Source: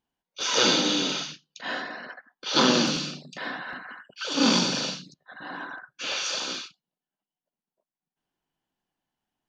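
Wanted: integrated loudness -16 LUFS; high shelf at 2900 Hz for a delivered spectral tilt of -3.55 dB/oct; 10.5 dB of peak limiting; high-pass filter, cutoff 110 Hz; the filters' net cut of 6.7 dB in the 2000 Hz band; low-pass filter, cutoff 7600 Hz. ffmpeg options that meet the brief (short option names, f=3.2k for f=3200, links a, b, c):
-af "highpass=110,lowpass=7.6k,equalizer=f=2k:t=o:g=-6,highshelf=f=2.9k:g=-8.5,volume=17.5dB,alimiter=limit=-3dB:level=0:latency=1"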